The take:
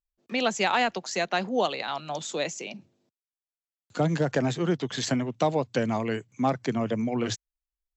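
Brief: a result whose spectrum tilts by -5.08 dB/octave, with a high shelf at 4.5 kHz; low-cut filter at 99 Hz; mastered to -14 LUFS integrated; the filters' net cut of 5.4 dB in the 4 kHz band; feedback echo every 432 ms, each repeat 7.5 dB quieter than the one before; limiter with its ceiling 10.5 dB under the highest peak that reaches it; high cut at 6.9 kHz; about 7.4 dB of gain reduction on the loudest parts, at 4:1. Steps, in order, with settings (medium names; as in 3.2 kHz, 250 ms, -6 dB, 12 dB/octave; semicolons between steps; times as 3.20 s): high-pass 99 Hz; low-pass 6.9 kHz; peaking EQ 4 kHz -4 dB; treble shelf 4.5 kHz -5.5 dB; compression 4:1, threshold -29 dBFS; peak limiter -28.5 dBFS; feedback delay 432 ms, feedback 42%, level -7.5 dB; trim +24 dB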